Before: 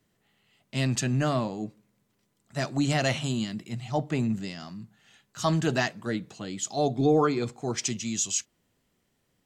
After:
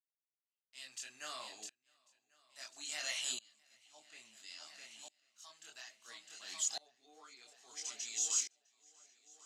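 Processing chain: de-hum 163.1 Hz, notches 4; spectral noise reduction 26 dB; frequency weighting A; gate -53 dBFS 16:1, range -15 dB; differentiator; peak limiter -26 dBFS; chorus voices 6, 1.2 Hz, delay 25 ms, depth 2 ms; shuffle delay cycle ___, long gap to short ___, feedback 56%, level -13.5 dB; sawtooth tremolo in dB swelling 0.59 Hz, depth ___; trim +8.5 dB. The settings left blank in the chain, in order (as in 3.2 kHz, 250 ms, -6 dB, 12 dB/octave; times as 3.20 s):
1093 ms, 1.5:1, 28 dB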